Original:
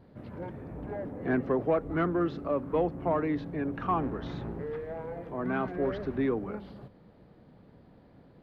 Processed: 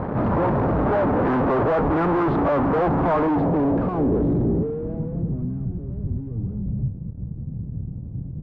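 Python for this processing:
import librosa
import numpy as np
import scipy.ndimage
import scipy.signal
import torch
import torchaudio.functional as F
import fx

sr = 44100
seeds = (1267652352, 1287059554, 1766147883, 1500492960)

y = fx.fuzz(x, sr, gain_db=54.0, gate_db=-59.0)
y = fx.filter_sweep_lowpass(y, sr, from_hz=1100.0, to_hz=120.0, start_s=3.09, end_s=5.69, q=1.4)
y = y * librosa.db_to_amplitude(-6.5)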